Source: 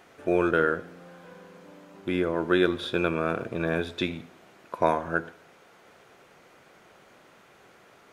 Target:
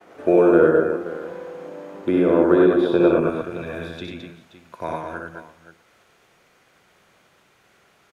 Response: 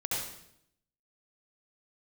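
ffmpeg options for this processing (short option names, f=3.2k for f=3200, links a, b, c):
-filter_complex "[0:a]agate=range=-33dB:threshold=-53dB:ratio=3:detection=peak,asetnsamples=n=441:p=0,asendcmd='3.2 equalizer g -6.5',equalizer=f=480:w=0.35:g=11,acrossover=split=370|1300|5600[a][b][c][d];[a]acompressor=threshold=-18dB:ratio=4[e];[b]acompressor=threshold=-16dB:ratio=4[f];[c]acompressor=threshold=-40dB:ratio=4[g];[d]acompressor=threshold=-59dB:ratio=4[h];[e][f][g][h]amix=inputs=4:normalize=0,aecho=1:1:63|95|215|527:0.596|0.708|0.531|0.2,volume=-1dB"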